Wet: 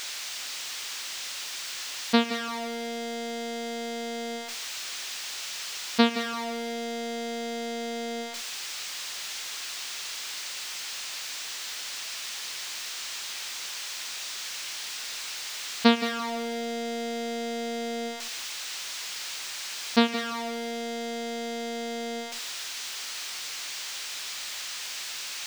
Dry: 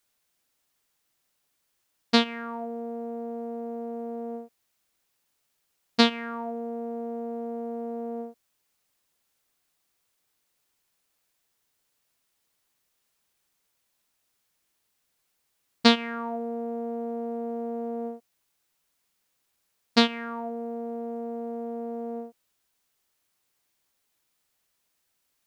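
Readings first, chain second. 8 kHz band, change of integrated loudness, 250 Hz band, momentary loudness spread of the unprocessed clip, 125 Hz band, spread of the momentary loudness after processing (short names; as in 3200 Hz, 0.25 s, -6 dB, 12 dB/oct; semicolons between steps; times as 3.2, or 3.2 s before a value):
+19.0 dB, -1.5 dB, -0.5 dB, 13 LU, n/a, 9 LU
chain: switching spikes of -14 dBFS; air absorption 160 m; lo-fi delay 0.17 s, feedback 35%, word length 6-bit, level -10.5 dB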